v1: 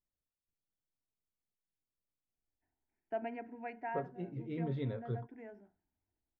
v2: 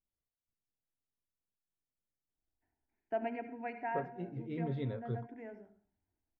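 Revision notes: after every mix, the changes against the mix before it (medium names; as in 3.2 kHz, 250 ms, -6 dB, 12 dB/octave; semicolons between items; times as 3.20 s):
reverb: on, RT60 0.35 s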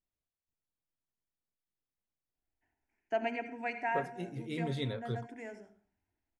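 master: remove tape spacing loss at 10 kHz 43 dB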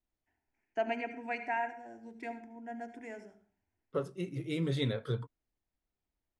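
first voice: entry -2.35 s; second voice +3.5 dB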